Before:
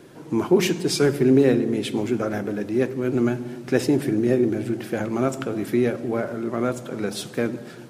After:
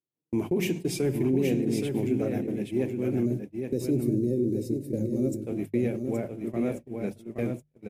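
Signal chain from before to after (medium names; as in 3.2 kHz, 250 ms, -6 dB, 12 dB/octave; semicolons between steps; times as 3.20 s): gate -26 dBFS, range -47 dB; hum notches 50/100/150 Hz; time-frequency box 3.26–5.44 s, 610–3600 Hz -17 dB; FFT filter 110 Hz 0 dB, 740 Hz -8 dB, 1.4 kHz -19 dB, 2.3 kHz -4 dB, 4.3 kHz -14 dB, 14 kHz -2 dB; peak limiter -18 dBFS, peak gain reduction 7 dB; delay 822 ms -5.5 dB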